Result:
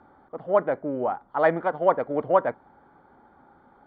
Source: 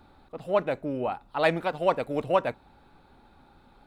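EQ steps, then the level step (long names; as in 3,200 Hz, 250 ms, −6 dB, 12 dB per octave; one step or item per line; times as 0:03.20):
Savitzky-Golay smoothing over 41 samples
high-pass filter 300 Hz 6 dB per octave
high-frequency loss of the air 140 metres
+5.0 dB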